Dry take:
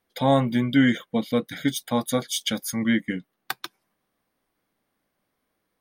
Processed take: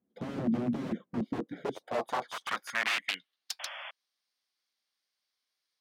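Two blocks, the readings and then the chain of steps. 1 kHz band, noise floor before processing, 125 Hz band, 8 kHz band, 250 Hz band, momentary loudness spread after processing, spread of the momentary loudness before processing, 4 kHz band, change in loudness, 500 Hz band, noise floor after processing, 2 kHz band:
−7.0 dB, −78 dBFS, −14.0 dB, −13.0 dB, −12.0 dB, 10 LU, 14 LU, −8.0 dB, −10.0 dB, −11.0 dB, below −85 dBFS, −4.5 dB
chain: wrap-around overflow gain 21 dB
band-pass filter sweep 220 Hz → 4,800 Hz, 0:01.17–0:03.50
sound drawn into the spectrogram noise, 0:03.59–0:03.91, 530–3,500 Hz −48 dBFS
level +5 dB

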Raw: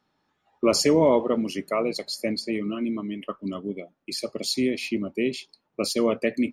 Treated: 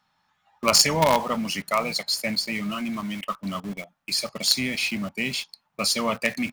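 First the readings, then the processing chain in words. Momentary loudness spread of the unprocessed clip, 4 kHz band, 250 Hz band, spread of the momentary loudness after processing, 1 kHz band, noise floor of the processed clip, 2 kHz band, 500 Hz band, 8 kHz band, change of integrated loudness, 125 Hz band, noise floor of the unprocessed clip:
14 LU, +7.5 dB, −4.0 dB, 13 LU, +6.5 dB, −72 dBFS, +7.5 dB, −4.5 dB, +7.5 dB, +1.5 dB, +2.0 dB, −75 dBFS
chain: drawn EQ curve 190 Hz 0 dB, 360 Hz −17 dB, 830 Hz +5 dB
in parallel at −11.5 dB: log-companded quantiser 2 bits

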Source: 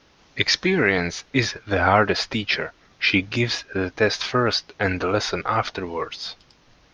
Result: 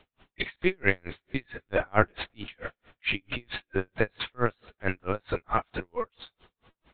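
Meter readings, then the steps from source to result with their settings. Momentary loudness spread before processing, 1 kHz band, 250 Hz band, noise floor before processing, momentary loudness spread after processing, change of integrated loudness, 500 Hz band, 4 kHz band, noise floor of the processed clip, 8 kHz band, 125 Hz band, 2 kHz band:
10 LU, −8.5 dB, −9.5 dB, −57 dBFS, 13 LU, −9.0 dB, −7.5 dB, −14.0 dB, below −85 dBFS, can't be measured, −8.5 dB, −8.5 dB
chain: linear-prediction vocoder at 8 kHz pitch kept
coupled-rooms reverb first 0.55 s, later 3.9 s, from −18 dB, DRR 18.5 dB
tremolo with a sine in dB 4.5 Hz, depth 40 dB
level −1 dB

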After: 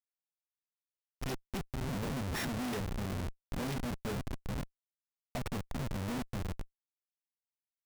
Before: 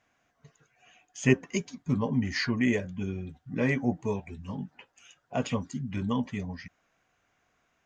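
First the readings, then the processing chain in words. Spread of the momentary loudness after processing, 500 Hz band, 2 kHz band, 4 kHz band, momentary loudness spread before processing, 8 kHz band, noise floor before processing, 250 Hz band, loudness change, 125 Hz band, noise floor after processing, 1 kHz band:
7 LU, −10.0 dB, −10.0 dB, −5.0 dB, 13 LU, can't be measured, −74 dBFS, −10.0 dB, −8.5 dB, −6.0 dB, below −85 dBFS, −3.5 dB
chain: samples sorted by size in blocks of 8 samples
feedback delay with all-pass diffusion 494 ms, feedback 42%, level −13.5 dB
comparator with hysteresis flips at −31 dBFS
level −4 dB

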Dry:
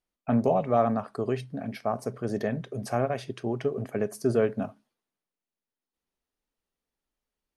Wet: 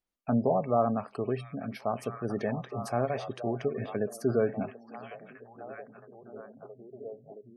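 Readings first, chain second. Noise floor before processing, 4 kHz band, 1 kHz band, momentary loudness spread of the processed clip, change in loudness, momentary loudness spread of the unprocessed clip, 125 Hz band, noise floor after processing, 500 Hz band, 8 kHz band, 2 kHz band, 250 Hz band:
below −85 dBFS, −3.5 dB, −2.0 dB, 21 LU, −2.5 dB, 9 LU, −2.5 dB, −58 dBFS, −2.5 dB, −3.5 dB, −2.5 dB, −2.5 dB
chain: echo through a band-pass that steps 670 ms, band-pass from 2,700 Hz, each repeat −0.7 octaves, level −4 dB
gate on every frequency bin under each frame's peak −30 dB strong
level −2.5 dB

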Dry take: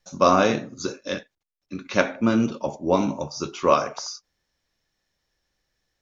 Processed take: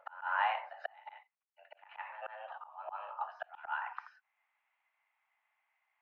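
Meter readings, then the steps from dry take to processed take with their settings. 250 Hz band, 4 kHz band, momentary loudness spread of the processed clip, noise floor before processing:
below −40 dB, −19.0 dB, 21 LU, −81 dBFS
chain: single-sideband voice off tune +310 Hz 430–2,400 Hz
backwards echo 141 ms −14 dB
volume swells 773 ms
level +1 dB

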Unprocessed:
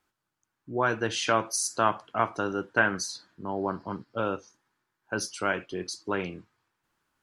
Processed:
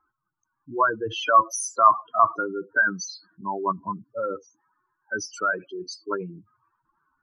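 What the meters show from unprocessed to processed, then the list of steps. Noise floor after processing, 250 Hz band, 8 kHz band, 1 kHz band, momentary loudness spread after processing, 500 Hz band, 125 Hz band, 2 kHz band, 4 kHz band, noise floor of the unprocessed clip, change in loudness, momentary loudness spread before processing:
−80 dBFS, −2.5 dB, −0.5 dB, +8.5 dB, 17 LU, +1.0 dB, −4.5 dB, +3.5 dB, −1.0 dB, −83 dBFS, +5.5 dB, 11 LU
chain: expanding power law on the bin magnitudes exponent 3.3
parametric band 1,100 Hz +13.5 dB 0.53 octaves

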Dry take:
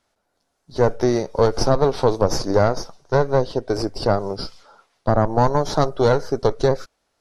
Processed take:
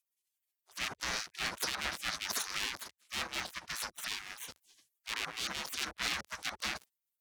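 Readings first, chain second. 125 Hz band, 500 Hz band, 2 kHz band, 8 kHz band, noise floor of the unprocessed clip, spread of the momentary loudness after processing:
−33.0 dB, −34.0 dB, −3.5 dB, −3.5 dB, −73 dBFS, 9 LU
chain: half-wave rectification
tube saturation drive 13 dB, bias 0.2
gate on every frequency bin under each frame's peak −25 dB weak
level +7 dB

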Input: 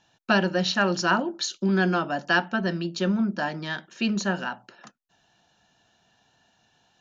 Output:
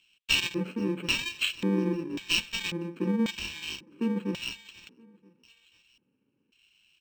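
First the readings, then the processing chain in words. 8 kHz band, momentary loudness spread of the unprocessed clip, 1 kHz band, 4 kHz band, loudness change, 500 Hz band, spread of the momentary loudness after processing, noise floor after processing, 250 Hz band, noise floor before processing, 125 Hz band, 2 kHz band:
can't be measured, 8 LU, −17.0 dB, +1.5 dB, −4.5 dB, −7.5 dB, 10 LU, −76 dBFS, −4.5 dB, −68 dBFS, −6.0 dB, −6.5 dB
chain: samples in bit-reversed order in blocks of 64 samples
parametric band 2,600 Hz +11 dB 1.2 octaves
repeating echo 488 ms, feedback 44%, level −20 dB
auto-filter band-pass square 0.92 Hz 300–3,400 Hz
linearly interpolated sample-rate reduction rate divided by 4×
level +5 dB

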